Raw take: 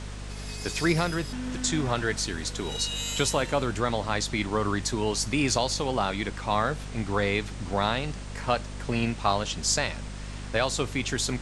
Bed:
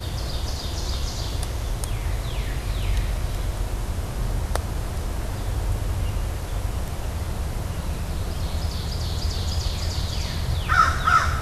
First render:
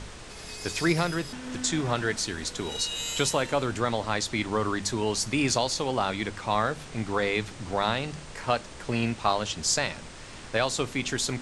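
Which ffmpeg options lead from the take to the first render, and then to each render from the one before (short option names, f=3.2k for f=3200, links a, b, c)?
-af "bandreject=f=50:t=h:w=4,bandreject=f=100:t=h:w=4,bandreject=f=150:t=h:w=4,bandreject=f=200:t=h:w=4,bandreject=f=250:t=h:w=4"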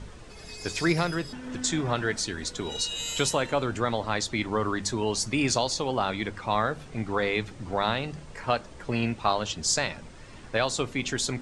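-af "afftdn=nr=9:nf=-43"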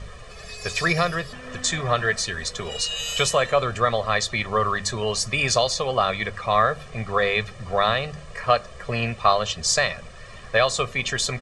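-af "equalizer=f=1.7k:t=o:w=2.7:g=5.5,aecho=1:1:1.7:0.82"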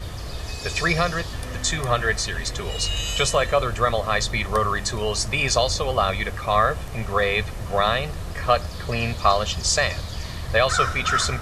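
-filter_complex "[1:a]volume=-5dB[a];[0:a][a]amix=inputs=2:normalize=0"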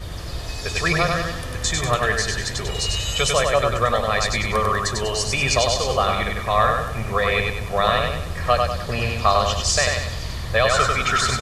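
-af "aecho=1:1:97|194|291|388|485:0.668|0.287|0.124|0.0531|0.0228"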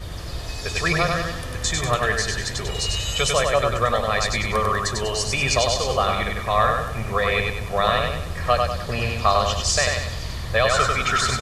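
-af "volume=-1dB"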